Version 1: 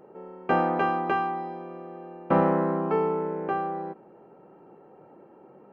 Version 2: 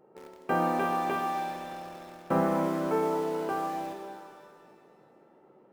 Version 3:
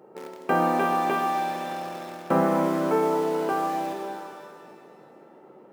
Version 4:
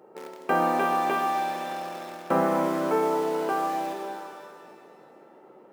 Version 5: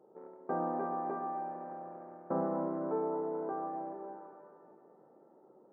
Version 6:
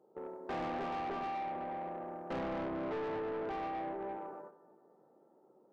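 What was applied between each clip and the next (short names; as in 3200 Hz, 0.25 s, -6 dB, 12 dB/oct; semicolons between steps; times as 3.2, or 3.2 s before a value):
in parallel at -5 dB: bit-crush 6-bit; on the sum: shimmer reverb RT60 2.1 s, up +7 st, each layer -8 dB, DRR 3.5 dB; gain -9 dB
in parallel at -0.5 dB: compressor, threshold -37 dBFS, peak gain reduction 14.5 dB; on the sum: HPF 140 Hz 12 dB/oct; gain +3 dB
low shelf 190 Hz -9 dB
Gaussian blur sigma 7.6 samples; gain -8 dB
gate -54 dBFS, range -12 dB; in parallel at +1 dB: compressor 6:1, threshold -42 dBFS, peak gain reduction 12.5 dB; on the sum: soft clip -36 dBFS, distortion -8 dB; gain +1 dB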